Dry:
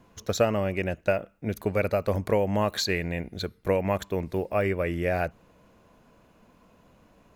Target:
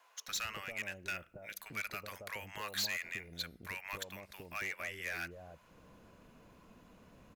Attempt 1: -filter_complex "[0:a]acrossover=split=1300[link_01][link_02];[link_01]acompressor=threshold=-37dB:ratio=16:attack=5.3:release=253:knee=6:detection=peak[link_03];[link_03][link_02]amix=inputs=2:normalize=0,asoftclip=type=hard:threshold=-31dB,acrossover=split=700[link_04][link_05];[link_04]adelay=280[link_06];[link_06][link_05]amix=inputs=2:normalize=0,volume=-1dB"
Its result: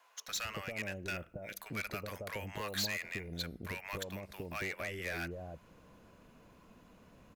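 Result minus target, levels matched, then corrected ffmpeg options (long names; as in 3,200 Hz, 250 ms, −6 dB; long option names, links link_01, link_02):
downward compressor: peak gain reduction −9 dB
-filter_complex "[0:a]acrossover=split=1300[link_01][link_02];[link_01]acompressor=threshold=-46.5dB:ratio=16:attack=5.3:release=253:knee=6:detection=peak[link_03];[link_03][link_02]amix=inputs=2:normalize=0,asoftclip=type=hard:threshold=-31dB,acrossover=split=700[link_04][link_05];[link_04]adelay=280[link_06];[link_06][link_05]amix=inputs=2:normalize=0,volume=-1dB"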